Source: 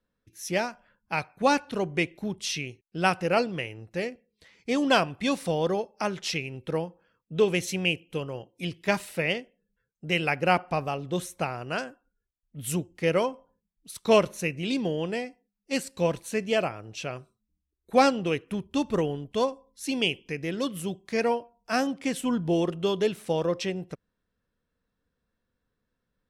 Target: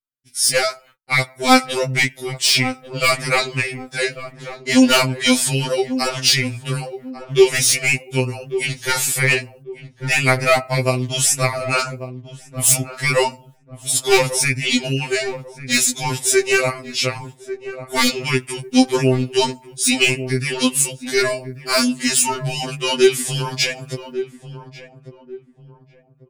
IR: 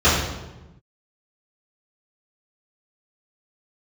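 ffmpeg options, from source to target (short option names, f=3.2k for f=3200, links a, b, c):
-filter_complex "[0:a]agate=range=-32dB:threshold=-57dB:ratio=16:detection=peak,asetrate=39289,aresample=44100,atempo=1.12246,crystalizer=i=6:c=0,aeval=exprs='1*(cos(1*acos(clip(val(0)/1,-1,1)))-cos(1*PI/2))+0.355*(cos(5*acos(clip(val(0)/1,-1,1)))-cos(5*PI/2))':c=same,apsyclip=8.5dB,asplit=2[a][b];[b]adelay=1144,lowpass=f=820:p=1,volume=-10.5dB,asplit=2[c][d];[d]adelay=1144,lowpass=f=820:p=1,volume=0.35,asplit=2[e][f];[f]adelay=1144,lowpass=f=820:p=1,volume=0.35,asplit=2[g][h];[h]adelay=1144,lowpass=f=820:p=1,volume=0.35[i];[c][e][g][i]amix=inputs=4:normalize=0[j];[a][j]amix=inputs=2:normalize=0,afftfilt=real='re*2.45*eq(mod(b,6),0)':imag='im*2.45*eq(mod(b,6),0)':win_size=2048:overlap=0.75,volume=-7dB"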